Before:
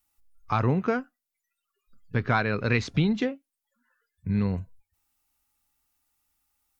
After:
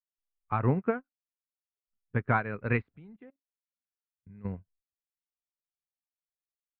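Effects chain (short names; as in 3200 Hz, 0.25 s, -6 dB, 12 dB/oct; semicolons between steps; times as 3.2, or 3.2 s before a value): LPF 2300 Hz 24 dB/oct; 2.96–4.45 level quantiser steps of 16 dB; upward expander 2.5:1, over -42 dBFS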